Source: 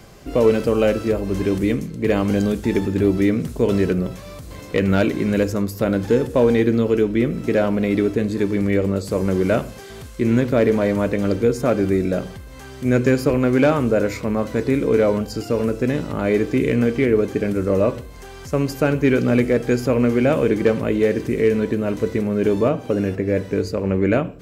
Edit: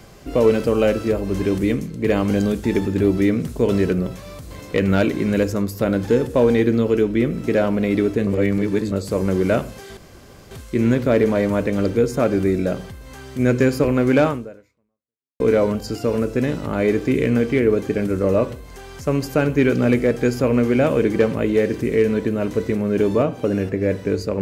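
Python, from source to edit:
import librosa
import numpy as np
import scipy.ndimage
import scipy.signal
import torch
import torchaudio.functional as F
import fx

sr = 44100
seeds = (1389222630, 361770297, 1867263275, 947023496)

y = fx.edit(x, sr, fx.reverse_span(start_s=8.27, length_s=0.65),
    fx.insert_room_tone(at_s=9.97, length_s=0.54),
    fx.fade_out_span(start_s=13.74, length_s=1.12, curve='exp'), tone=tone)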